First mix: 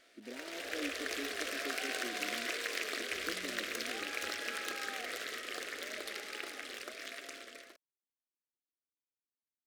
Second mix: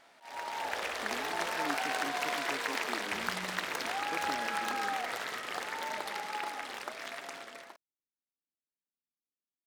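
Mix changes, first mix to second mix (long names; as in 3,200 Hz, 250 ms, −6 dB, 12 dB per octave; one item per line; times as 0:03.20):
speech: entry +0.85 s
master: remove phaser with its sweep stopped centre 370 Hz, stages 4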